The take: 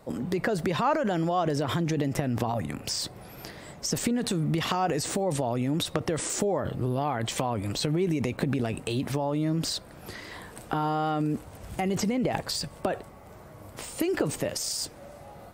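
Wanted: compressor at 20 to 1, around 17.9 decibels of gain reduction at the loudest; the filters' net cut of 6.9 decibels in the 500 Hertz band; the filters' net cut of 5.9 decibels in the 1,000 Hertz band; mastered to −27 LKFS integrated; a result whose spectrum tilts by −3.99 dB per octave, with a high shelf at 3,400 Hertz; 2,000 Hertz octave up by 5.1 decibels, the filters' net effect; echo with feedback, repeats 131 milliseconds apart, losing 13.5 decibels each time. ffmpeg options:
ffmpeg -i in.wav -af "equalizer=frequency=500:width_type=o:gain=-8,equalizer=frequency=1000:width_type=o:gain=-7,equalizer=frequency=2000:width_type=o:gain=7,highshelf=frequency=3400:gain=6,acompressor=threshold=-41dB:ratio=20,aecho=1:1:131|262:0.211|0.0444,volume=17.5dB" out.wav

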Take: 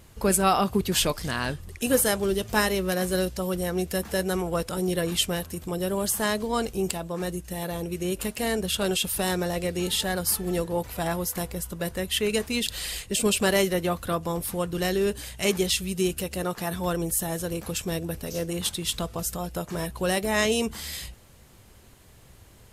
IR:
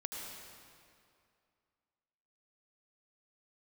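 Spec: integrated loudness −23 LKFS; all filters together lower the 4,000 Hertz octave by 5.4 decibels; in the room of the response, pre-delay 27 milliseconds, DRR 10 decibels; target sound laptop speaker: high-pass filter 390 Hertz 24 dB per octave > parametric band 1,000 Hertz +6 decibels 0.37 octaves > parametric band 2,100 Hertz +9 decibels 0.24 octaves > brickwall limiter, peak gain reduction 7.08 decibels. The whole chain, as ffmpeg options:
-filter_complex "[0:a]equalizer=frequency=4000:width_type=o:gain=-8,asplit=2[link_01][link_02];[1:a]atrim=start_sample=2205,adelay=27[link_03];[link_02][link_03]afir=irnorm=-1:irlink=0,volume=-10.5dB[link_04];[link_01][link_04]amix=inputs=2:normalize=0,highpass=frequency=390:width=0.5412,highpass=frequency=390:width=1.3066,equalizer=frequency=1000:width_type=o:width=0.37:gain=6,equalizer=frequency=2100:width_type=o:width=0.24:gain=9,volume=6.5dB,alimiter=limit=-9dB:level=0:latency=1"

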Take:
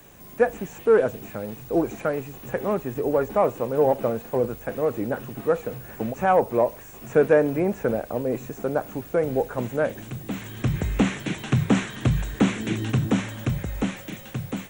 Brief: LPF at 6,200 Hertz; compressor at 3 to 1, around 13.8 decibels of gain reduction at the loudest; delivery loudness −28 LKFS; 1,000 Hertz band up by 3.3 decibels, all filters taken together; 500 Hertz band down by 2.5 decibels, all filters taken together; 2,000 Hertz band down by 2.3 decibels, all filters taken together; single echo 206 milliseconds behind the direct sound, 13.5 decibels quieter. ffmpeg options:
ffmpeg -i in.wav -af "lowpass=6200,equalizer=frequency=500:width_type=o:gain=-4.5,equalizer=frequency=1000:width_type=o:gain=8,equalizer=frequency=2000:width_type=o:gain=-6.5,acompressor=threshold=-34dB:ratio=3,aecho=1:1:206:0.211,volume=8.5dB" out.wav

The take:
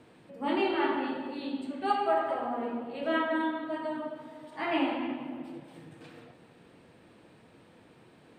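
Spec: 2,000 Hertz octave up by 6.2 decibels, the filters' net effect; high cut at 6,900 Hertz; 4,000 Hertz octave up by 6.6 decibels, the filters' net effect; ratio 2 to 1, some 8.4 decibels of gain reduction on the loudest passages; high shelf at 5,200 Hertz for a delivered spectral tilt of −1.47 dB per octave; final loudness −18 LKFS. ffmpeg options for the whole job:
ffmpeg -i in.wav -af "lowpass=6900,equalizer=frequency=2000:width_type=o:gain=6.5,equalizer=frequency=4000:width_type=o:gain=8,highshelf=frequency=5200:gain=-4,acompressor=threshold=-37dB:ratio=2,volume=18.5dB" out.wav

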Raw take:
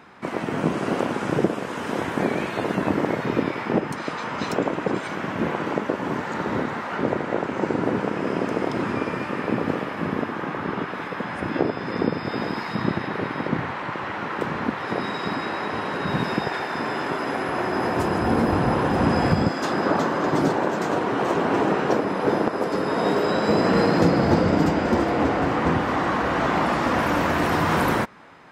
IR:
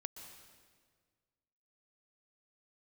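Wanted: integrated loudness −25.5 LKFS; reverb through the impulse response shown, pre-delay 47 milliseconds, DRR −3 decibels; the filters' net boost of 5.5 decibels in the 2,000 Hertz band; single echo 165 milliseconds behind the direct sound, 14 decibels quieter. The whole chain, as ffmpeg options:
-filter_complex "[0:a]equalizer=frequency=2000:width_type=o:gain=7,aecho=1:1:165:0.2,asplit=2[link_01][link_02];[1:a]atrim=start_sample=2205,adelay=47[link_03];[link_02][link_03]afir=irnorm=-1:irlink=0,volume=6dB[link_04];[link_01][link_04]amix=inputs=2:normalize=0,volume=-8dB"

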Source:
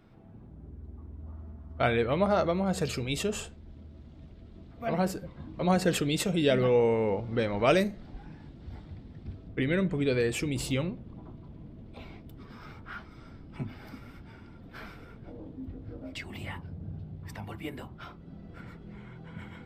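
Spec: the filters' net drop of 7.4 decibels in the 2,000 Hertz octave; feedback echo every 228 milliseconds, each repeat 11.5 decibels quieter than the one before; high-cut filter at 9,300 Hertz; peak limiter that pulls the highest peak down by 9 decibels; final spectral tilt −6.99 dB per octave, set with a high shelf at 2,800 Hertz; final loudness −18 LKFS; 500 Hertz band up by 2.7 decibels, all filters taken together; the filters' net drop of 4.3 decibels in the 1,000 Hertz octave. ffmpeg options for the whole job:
ffmpeg -i in.wav -af "lowpass=9300,equalizer=frequency=500:width_type=o:gain=5.5,equalizer=frequency=1000:width_type=o:gain=-8,equalizer=frequency=2000:width_type=o:gain=-4,highshelf=frequency=2800:gain=-8,alimiter=limit=-21dB:level=0:latency=1,aecho=1:1:228|456|684:0.266|0.0718|0.0194,volume=13.5dB" out.wav

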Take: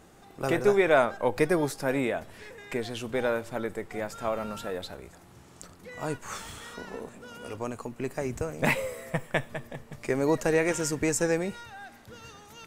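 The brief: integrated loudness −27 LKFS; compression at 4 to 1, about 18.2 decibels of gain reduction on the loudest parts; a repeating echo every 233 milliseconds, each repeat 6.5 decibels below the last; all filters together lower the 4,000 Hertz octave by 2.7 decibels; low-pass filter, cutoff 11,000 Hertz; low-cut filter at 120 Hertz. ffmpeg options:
ffmpeg -i in.wav -af "highpass=120,lowpass=11000,equalizer=frequency=4000:width_type=o:gain=-3.5,acompressor=threshold=-40dB:ratio=4,aecho=1:1:233|466|699|932|1165|1398:0.473|0.222|0.105|0.0491|0.0231|0.0109,volume=15dB" out.wav

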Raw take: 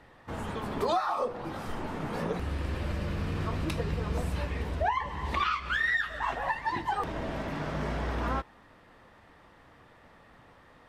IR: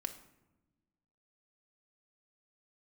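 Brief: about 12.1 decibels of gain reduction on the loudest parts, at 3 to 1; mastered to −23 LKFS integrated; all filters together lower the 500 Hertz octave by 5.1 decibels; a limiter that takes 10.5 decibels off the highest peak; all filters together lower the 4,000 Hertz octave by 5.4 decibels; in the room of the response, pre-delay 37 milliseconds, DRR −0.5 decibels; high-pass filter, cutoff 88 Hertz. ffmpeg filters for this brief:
-filter_complex "[0:a]highpass=88,equalizer=frequency=500:width_type=o:gain=-6.5,equalizer=frequency=4000:width_type=o:gain=-7,acompressor=threshold=-43dB:ratio=3,alimiter=level_in=15dB:limit=-24dB:level=0:latency=1,volume=-15dB,asplit=2[link_01][link_02];[1:a]atrim=start_sample=2205,adelay=37[link_03];[link_02][link_03]afir=irnorm=-1:irlink=0,volume=1.5dB[link_04];[link_01][link_04]amix=inputs=2:normalize=0,volume=22.5dB"

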